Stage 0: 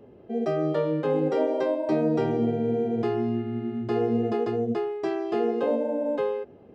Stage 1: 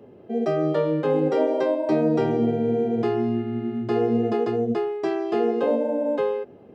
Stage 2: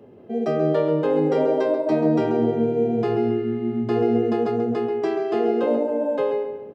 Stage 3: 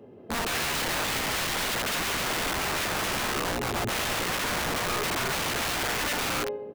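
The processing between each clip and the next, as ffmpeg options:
-af "highpass=93,volume=3dB"
-filter_complex "[0:a]asplit=2[a][b];[b]adelay=135,lowpass=f=2.4k:p=1,volume=-6dB,asplit=2[c][d];[d]adelay=135,lowpass=f=2.4k:p=1,volume=0.44,asplit=2[e][f];[f]adelay=135,lowpass=f=2.4k:p=1,volume=0.44,asplit=2[g][h];[h]adelay=135,lowpass=f=2.4k:p=1,volume=0.44,asplit=2[i][j];[j]adelay=135,lowpass=f=2.4k:p=1,volume=0.44[k];[a][c][e][g][i][k]amix=inputs=6:normalize=0"
-af "aeval=exprs='(mod(13.3*val(0)+1,2)-1)/13.3':c=same,volume=-1.5dB"

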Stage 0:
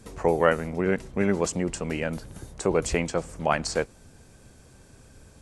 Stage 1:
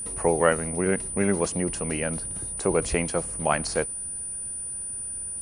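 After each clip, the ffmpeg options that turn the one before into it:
-filter_complex "[0:a]acrossover=split=6900[a][b];[b]acompressor=threshold=-54dB:ratio=4:attack=1:release=60[c];[a][c]amix=inputs=2:normalize=0,aeval=exprs='val(0)+0.0282*sin(2*PI*9400*n/s)':c=same"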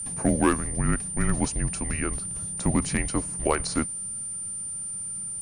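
-af "volume=11dB,asoftclip=hard,volume=-11dB,afreqshift=-220"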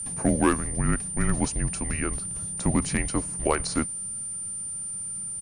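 -af "aresample=32000,aresample=44100"

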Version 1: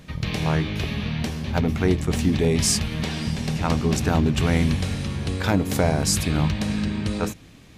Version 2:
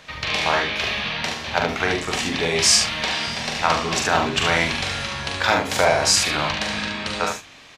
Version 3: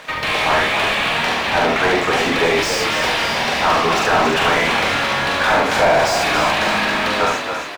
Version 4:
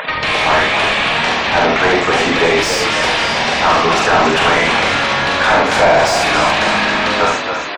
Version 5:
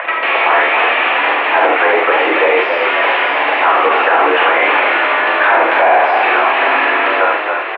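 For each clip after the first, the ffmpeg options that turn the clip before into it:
-filter_complex "[0:a]acrossover=split=570 7100:gain=0.1 1 0.178[a][b][c];[a][b][c]amix=inputs=3:normalize=0,asplit=2[d][e];[e]adelay=45,volume=-12dB[f];[d][f]amix=inputs=2:normalize=0,asplit=2[g][h];[h]aecho=0:1:42|72:0.531|0.562[i];[g][i]amix=inputs=2:normalize=0,volume=8dB"
-filter_complex "[0:a]asplit=2[a][b];[b]highpass=f=720:p=1,volume=28dB,asoftclip=type=tanh:threshold=-1.5dB[c];[a][c]amix=inputs=2:normalize=0,lowpass=f=1.1k:p=1,volume=-6dB,aeval=exprs='sgn(val(0))*max(abs(val(0))-0.0106,0)':c=same,asplit=7[d][e][f][g][h][i][j];[e]adelay=276,afreqshift=41,volume=-7dB[k];[f]adelay=552,afreqshift=82,volume=-12.7dB[l];[g]adelay=828,afreqshift=123,volume=-18.4dB[m];[h]adelay=1104,afreqshift=164,volume=-24dB[n];[i]adelay=1380,afreqshift=205,volume=-29.7dB[o];[j]adelay=1656,afreqshift=246,volume=-35.4dB[p];[d][k][l][m][n][o][p]amix=inputs=7:normalize=0,volume=-2.5dB"
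-af "afftfilt=real='re*gte(hypot(re,im),0.0126)':imag='im*gte(hypot(re,im),0.0126)':win_size=1024:overlap=0.75,acompressor=mode=upward:threshold=-19dB:ratio=2.5,volume=3.5dB"
-af "highpass=f=280:t=q:w=0.5412,highpass=f=280:t=q:w=1.307,lowpass=f=2.7k:t=q:w=0.5176,lowpass=f=2.7k:t=q:w=0.7071,lowpass=f=2.7k:t=q:w=1.932,afreqshift=58,alimiter=level_in=4dB:limit=-1dB:release=50:level=0:latency=1,volume=-1dB"

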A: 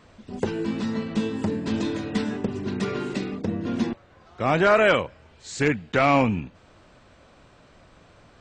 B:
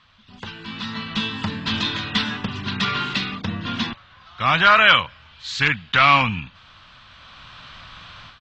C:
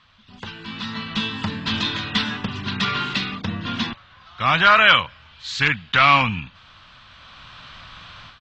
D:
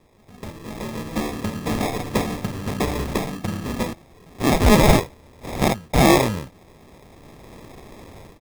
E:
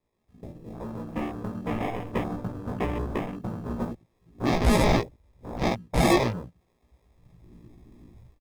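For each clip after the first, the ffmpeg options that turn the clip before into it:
-af "dynaudnorm=f=590:g=3:m=16dB,firequalizer=gain_entry='entry(130,0);entry(380,-15);entry(1100,8);entry(2100,6);entry(3300,15);entry(8800,-14)':delay=0.05:min_phase=1,volume=-7dB"
-af anull
-af "acrusher=samples=30:mix=1:aa=0.000001"
-filter_complex "[0:a]afwtdn=0.0251,asoftclip=type=tanh:threshold=-6.5dB,asplit=2[a][b];[b]adelay=17,volume=-2dB[c];[a][c]amix=inputs=2:normalize=0,volume=-7dB"

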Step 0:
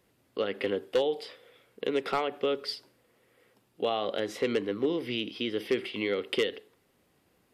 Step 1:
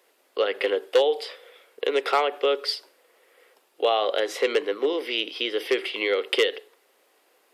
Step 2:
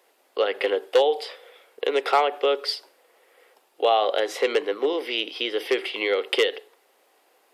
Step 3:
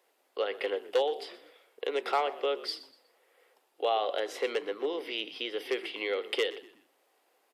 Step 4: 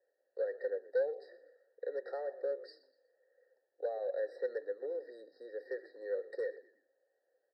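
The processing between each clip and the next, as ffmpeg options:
-af "highpass=f=410:w=0.5412,highpass=f=410:w=1.3066,volume=8dB"
-af "equalizer=f=790:w=2.6:g=5"
-filter_complex "[0:a]asplit=4[a][b][c][d];[b]adelay=122,afreqshift=-51,volume=-17.5dB[e];[c]adelay=244,afreqshift=-102,volume=-27.1dB[f];[d]adelay=366,afreqshift=-153,volume=-36.8dB[g];[a][e][f][g]amix=inputs=4:normalize=0,volume=-8.5dB"
-filter_complex "[0:a]asplit=3[a][b][c];[a]bandpass=f=530:t=q:w=8,volume=0dB[d];[b]bandpass=f=1.84k:t=q:w=8,volume=-6dB[e];[c]bandpass=f=2.48k:t=q:w=8,volume=-9dB[f];[d][e][f]amix=inputs=3:normalize=0,asoftclip=type=tanh:threshold=-26dB,afftfilt=real='re*eq(mod(floor(b*sr/1024/1900),2),0)':imag='im*eq(mod(floor(b*sr/1024/1900),2),0)':win_size=1024:overlap=0.75,volume=1dB"

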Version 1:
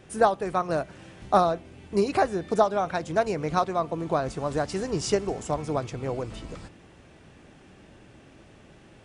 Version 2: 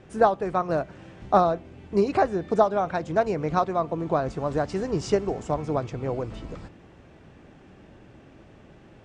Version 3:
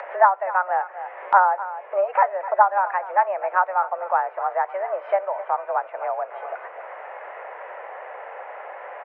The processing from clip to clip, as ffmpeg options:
-af "lowpass=f=8.2k:w=0.5412,lowpass=f=8.2k:w=1.3066,highshelf=f=2.5k:g=-9,volume=2dB"
-af "highpass=f=400:t=q:w=0.5412,highpass=f=400:t=q:w=1.307,lowpass=f=2k:t=q:w=0.5176,lowpass=f=2k:t=q:w=0.7071,lowpass=f=2k:t=q:w=1.932,afreqshift=190,aecho=1:1:254:0.158,acompressor=mode=upward:threshold=-26dB:ratio=2.5,volume=4dB"

